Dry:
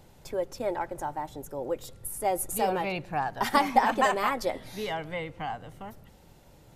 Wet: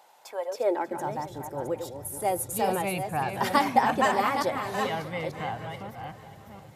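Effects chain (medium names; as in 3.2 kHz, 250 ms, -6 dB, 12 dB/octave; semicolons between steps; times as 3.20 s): chunks repeated in reverse 443 ms, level -7 dB; shuffle delay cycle 789 ms, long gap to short 3:1, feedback 30%, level -16 dB; high-pass sweep 820 Hz -> 97 Hz, 0.41–1.28 s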